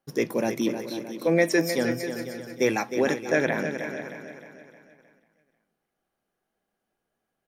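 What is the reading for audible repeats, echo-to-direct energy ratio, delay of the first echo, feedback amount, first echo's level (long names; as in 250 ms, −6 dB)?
7, −6.5 dB, 310 ms, repeats not evenly spaced, −9.0 dB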